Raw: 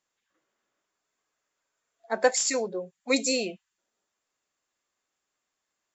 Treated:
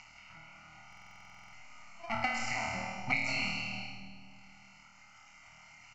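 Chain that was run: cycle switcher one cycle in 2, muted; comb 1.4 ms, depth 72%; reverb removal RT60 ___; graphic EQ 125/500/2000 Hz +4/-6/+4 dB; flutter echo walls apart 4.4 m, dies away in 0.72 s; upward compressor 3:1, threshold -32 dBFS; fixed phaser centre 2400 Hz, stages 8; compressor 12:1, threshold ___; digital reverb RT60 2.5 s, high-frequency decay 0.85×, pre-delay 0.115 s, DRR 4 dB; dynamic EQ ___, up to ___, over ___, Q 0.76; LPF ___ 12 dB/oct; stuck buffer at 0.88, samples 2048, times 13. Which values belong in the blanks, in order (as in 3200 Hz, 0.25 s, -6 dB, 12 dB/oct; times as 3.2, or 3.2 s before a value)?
1.9 s, -31 dBFS, 2200 Hz, +5 dB, -49 dBFS, 3600 Hz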